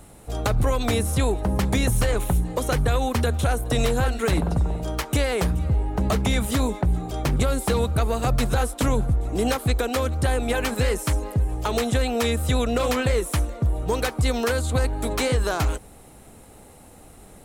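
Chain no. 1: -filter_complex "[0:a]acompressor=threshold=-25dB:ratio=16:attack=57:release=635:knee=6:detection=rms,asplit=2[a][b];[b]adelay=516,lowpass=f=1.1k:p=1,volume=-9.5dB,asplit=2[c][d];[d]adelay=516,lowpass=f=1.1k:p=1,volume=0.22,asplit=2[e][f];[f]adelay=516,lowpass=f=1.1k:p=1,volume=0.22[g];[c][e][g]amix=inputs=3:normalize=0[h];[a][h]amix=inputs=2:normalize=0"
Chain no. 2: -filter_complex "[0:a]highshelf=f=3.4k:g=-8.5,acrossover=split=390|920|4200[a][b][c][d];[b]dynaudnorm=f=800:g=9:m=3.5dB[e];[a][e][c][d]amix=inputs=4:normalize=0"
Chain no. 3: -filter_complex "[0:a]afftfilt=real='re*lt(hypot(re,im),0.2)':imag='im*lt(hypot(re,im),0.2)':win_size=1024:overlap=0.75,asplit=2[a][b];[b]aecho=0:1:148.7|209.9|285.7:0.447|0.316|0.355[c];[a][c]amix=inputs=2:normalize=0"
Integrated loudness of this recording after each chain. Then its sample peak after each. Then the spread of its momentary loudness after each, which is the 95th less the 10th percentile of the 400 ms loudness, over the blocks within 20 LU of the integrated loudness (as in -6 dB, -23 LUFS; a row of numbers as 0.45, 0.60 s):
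-30.0, -23.5, -29.5 LUFS; -16.5, -9.5, -12.0 dBFS; 3, 3, 6 LU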